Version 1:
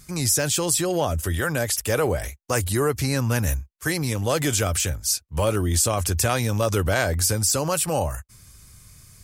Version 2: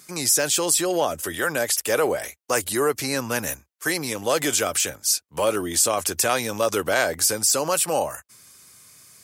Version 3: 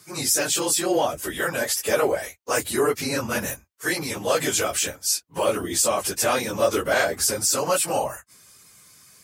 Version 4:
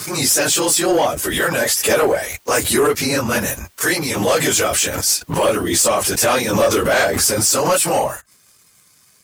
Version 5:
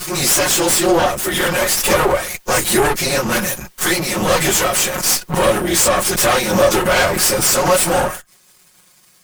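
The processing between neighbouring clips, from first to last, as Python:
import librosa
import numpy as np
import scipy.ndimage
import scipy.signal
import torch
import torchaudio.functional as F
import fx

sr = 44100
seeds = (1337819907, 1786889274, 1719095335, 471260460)

y1 = scipy.signal.sosfilt(scipy.signal.butter(2, 300.0, 'highpass', fs=sr, output='sos'), x)
y1 = y1 * librosa.db_to_amplitude(2.0)
y2 = fx.phase_scramble(y1, sr, seeds[0], window_ms=50)
y2 = fx.peak_eq(y2, sr, hz=11000.0, db=-2.5, octaves=1.6)
y3 = fx.leveller(y2, sr, passes=2)
y3 = fx.pre_swell(y3, sr, db_per_s=50.0)
y4 = fx.lower_of_two(y3, sr, delay_ms=5.5)
y4 = y4 * librosa.db_to_amplitude(3.0)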